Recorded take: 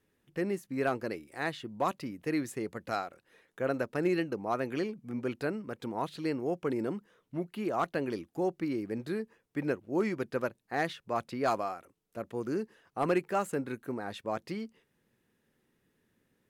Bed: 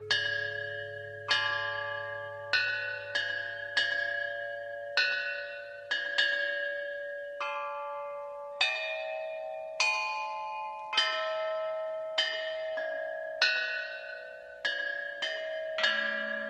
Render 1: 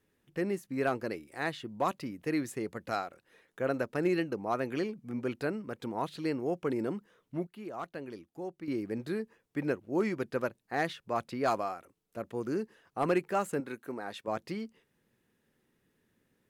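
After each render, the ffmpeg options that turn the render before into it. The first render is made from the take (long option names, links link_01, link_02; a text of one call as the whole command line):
ffmpeg -i in.wav -filter_complex "[0:a]asettb=1/sr,asplit=3[link_01][link_02][link_03];[link_01]atrim=end=13.604[link_04];[link_02]atrim=start=13.6:end=14.28,asetpts=PTS-STARTPTS,afade=type=in:duration=0.004:curve=qsin,afade=type=out:start_time=0.676:duration=0.004:curve=qsin,highpass=frequency=310:poles=1[link_05];[link_03]atrim=start=14.276[link_06];[link_04][link_05]acrossfade=duration=0.004:curve1=hsin:curve2=qsin[link_07];[link_07][link_06]acrossfade=duration=0.004:curve1=qsin:curve2=hsin,asplit=3[link_08][link_09][link_10];[link_08]atrim=end=7.472[link_11];[link_09]atrim=start=7.468:end=8.682,asetpts=PTS-STARTPTS,volume=-9dB[link_12];[link_10]atrim=start=8.678[link_13];[link_11][link_12]acrossfade=duration=0.004:curve1=hsin:curve2=hsin[link_14];[link_14][link_13]acrossfade=duration=0.004:curve1=hsin:curve2=hsin" out.wav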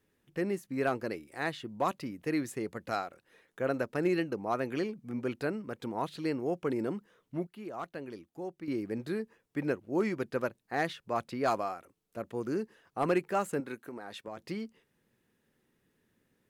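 ffmpeg -i in.wav -filter_complex "[0:a]asettb=1/sr,asplit=3[link_01][link_02][link_03];[link_01]atrim=end=13.744[link_04];[link_02]atrim=start=13.74:end=14.38,asetpts=PTS-STARTPTS,afade=type=in:duration=0.004:curve=qsin,afade=type=out:start_time=0.636:duration=0.004:curve=qsin,acompressor=threshold=-38dB:ratio=5:attack=3.2:release=140:knee=1:detection=peak[link_05];[link_03]atrim=start=14.376[link_06];[link_04][link_05]acrossfade=duration=0.004:curve1=hsin:curve2=qsin[link_07];[link_07][link_06]acrossfade=duration=0.004:curve1=qsin:curve2=hsin" out.wav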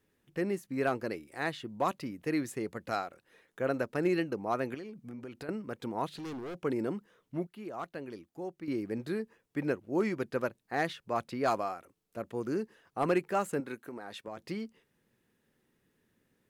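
ffmpeg -i in.wav -filter_complex "[0:a]asettb=1/sr,asplit=3[link_01][link_02][link_03];[link_01]atrim=end=4.744[link_04];[link_02]atrim=start=4.74:end=5.49,asetpts=PTS-STARTPTS,afade=type=in:duration=0.004:curve=qsin,afade=type=out:start_time=0.746:duration=0.004:curve=qsin,acompressor=threshold=-40dB:ratio=6:attack=3.2:release=140:knee=1:detection=peak[link_05];[link_03]atrim=start=5.486[link_06];[link_04][link_05]acrossfade=duration=0.004:curve1=hsin:curve2=qsin[link_07];[link_07][link_06]acrossfade=duration=0.004:curve1=qsin:curve2=hsin,asettb=1/sr,asplit=3[link_08][link_09][link_10];[link_08]atrim=end=6.174[link_11];[link_09]atrim=start=6.17:end=6.58,asetpts=PTS-STARTPTS,afade=type=in:duration=0.004:curve=qsin,afade=type=out:start_time=0.406:duration=0.004:curve=qsin,asoftclip=type=hard:threshold=-38dB[link_12];[link_10]atrim=start=6.576[link_13];[link_11][link_12]acrossfade=duration=0.004:curve1=hsin:curve2=qsin[link_14];[link_14][link_13]acrossfade=duration=0.004:curve1=qsin:curve2=hsin" out.wav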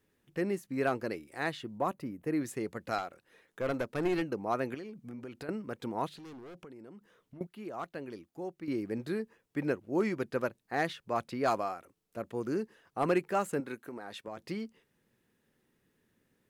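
ffmpeg -i in.wav -filter_complex "[0:a]asettb=1/sr,asplit=3[link_01][link_02][link_03];[link_01]atrim=end=1.784[link_04];[link_02]atrim=start=1.78:end=2.41,asetpts=PTS-STARTPTS,afade=type=in:duration=0.004:curve=qsin,afade=type=out:start_time=0.626:duration=0.004:curve=qsin,equalizer=frequency=4200:width_type=o:width=2.4:gain=-11[link_05];[link_03]atrim=start=2.406[link_06];[link_04][link_05]acrossfade=duration=0.004:curve1=hsin:curve2=qsin[link_07];[link_07][link_06]acrossfade=duration=0.004:curve1=qsin:curve2=hsin,asettb=1/sr,asplit=3[link_08][link_09][link_10];[link_08]atrim=end=2.984[link_11];[link_09]atrim=start=2.98:end=4.22,asetpts=PTS-STARTPTS,afade=type=in:duration=0.004:curve=qsin,afade=type=out:start_time=1.236:duration=0.004:curve=qsin,aeval=exprs='clip(val(0),-1,0.0355)':channel_layout=same[link_12];[link_10]atrim=start=4.216[link_13];[link_11][link_12]acrossfade=duration=0.004:curve1=hsin:curve2=qsin[link_14];[link_14][link_13]acrossfade=duration=0.004:curve1=qsin:curve2=hsin,asettb=1/sr,asplit=3[link_15][link_16][link_17];[link_15]atrim=end=6.074[link_18];[link_16]atrim=start=6.07:end=7.41,asetpts=PTS-STARTPTS,afade=type=in:duration=0.004:curve=qsin,afade=type=out:start_time=1.336:duration=0.004:curve=qsin,acompressor=threshold=-47dB:ratio=8:attack=3.2:release=140:knee=1:detection=peak[link_19];[link_17]atrim=start=7.406[link_20];[link_18][link_19]acrossfade=duration=0.004:curve1=hsin:curve2=qsin[link_21];[link_21][link_20]acrossfade=duration=0.004:curve1=qsin:curve2=hsin" out.wav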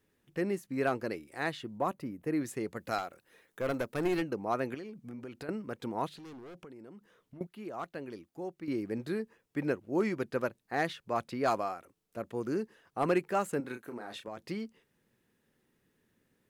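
ffmpeg -i in.wav -filter_complex "[0:a]asettb=1/sr,asplit=3[link_01][link_02][link_03];[link_01]atrim=end=2.764[link_04];[link_02]atrim=start=2.76:end=4.21,asetpts=PTS-STARTPTS,afade=type=in:duration=0.004:curve=qsin,afade=type=out:start_time=1.446:duration=0.004:curve=qsin,highshelf=frequency=10000:gain=9.5[link_05];[link_03]atrim=start=4.206[link_06];[link_04][link_05]acrossfade=duration=0.004:curve1=hsin:curve2=qsin[link_07];[link_07][link_06]acrossfade=duration=0.004:curve1=qsin:curve2=hsin,asettb=1/sr,asplit=3[link_08][link_09][link_10];[link_08]atrim=end=13.614[link_11];[link_09]atrim=start=13.61:end=14.29,asetpts=PTS-STARTPTS,afade=type=in:duration=0.004:curve=qsin,afade=type=out:start_time=0.676:duration=0.004:curve=qsin,asplit=2[link_12][link_13];[link_13]adelay=33,volume=-7dB[link_14];[link_12][link_14]amix=inputs=2:normalize=0,atrim=end_sample=29988[link_15];[link_10]atrim=start=14.286[link_16];[link_11][link_15]acrossfade=duration=0.004:curve1=hsin:curve2=qsin[link_17];[link_17][link_16]acrossfade=duration=0.004:curve1=qsin:curve2=hsin" out.wav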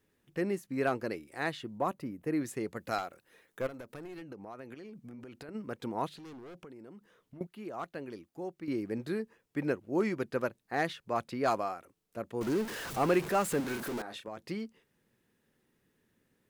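ffmpeg -i in.wav -filter_complex "[0:a]asplit=3[link_01][link_02][link_03];[link_01]afade=type=out:start_time=3.66:duration=0.02[link_04];[link_02]acompressor=threshold=-43dB:ratio=5:attack=3.2:release=140:knee=1:detection=peak,afade=type=in:start_time=3.66:duration=0.02,afade=type=out:start_time=5.54:duration=0.02[link_05];[link_03]afade=type=in:start_time=5.54:duration=0.02[link_06];[link_04][link_05][link_06]amix=inputs=3:normalize=0,asettb=1/sr,asplit=3[link_07][link_08][link_09];[link_07]atrim=end=12.414[link_10];[link_08]atrim=start=12.41:end=14.02,asetpts=PTS-STARTPTS,afade=type=in:duration=0.004:curve=qsin,afade=type=out:start_time=1.606:duration=0.004:curve=qsin,aeval=exprs='val(0)+0.5*0.0188*sgn(val(0))':channel_layout=same[link_11];[link_09]atrim=start=14.016[link_12];[link_10][link_11]acrossfade=duration=0.004:curve1=hsin:curve2=qsin[link_13];[link_13][link_12]acrossfade=duration=0.004:curve1=qsin:curve2=hsin" out.wav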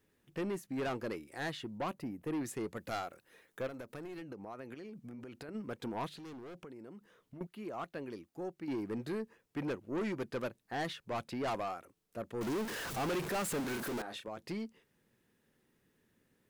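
ffmpeg -i in.wav -af "asoftclip=type=tanh:threshold=-32dB" out.wav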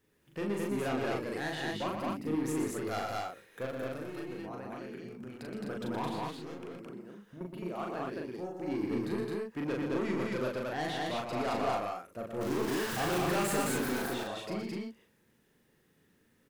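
ffmpeg -i in.wav -filter_complex "[0:a]asplit=2[link_01][link_02];[link_02]adelay=39,volume=-2.5dB[link_03];[link_01][link_03]amix=inputs=2:normalize=0,aecho=1:1:119.5|215.7:0.501|0.891" out.wav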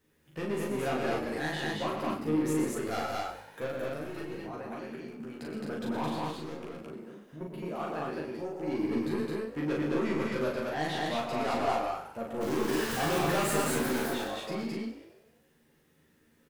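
ffmpeg -i in.wav -filter_complex "[0:a]asplit=2[link_01][link_02];[link_02]adelay=13,volume=-2dB[link_03];[link_01][link_03]amix=inputs=2:normalize=0,asplit=7[link_04][link_05][link_06][link_07][link_08][link_09][link_10];[link_05]adelay=95,afreqshift=52,volume=-13.5dB[link_11];[link_06]adelay=190,afreqshift=104,volume=-18.5dB[link_12];[link_07]adelay=285,afreqshift=156,volume=-23.6dB[link_13];[link_08]adelay=380,afreqshift=208,volume=-28.6dB[link_14];[link_09]adelay=475,afreqshift=260,volume=-33.6dB[link_15];[link_10]adelay=570,afreqshift=312,volume=-38.7dB[link_16];[link_04][link_11][link_12][link_13][link_14][link_15][link_16]amix=inputs=7:normalize=0" out.wav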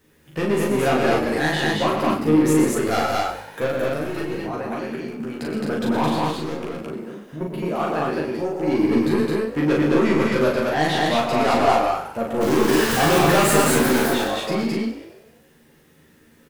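ffmpeg -i in.wav -af "volume=12dB" out.wav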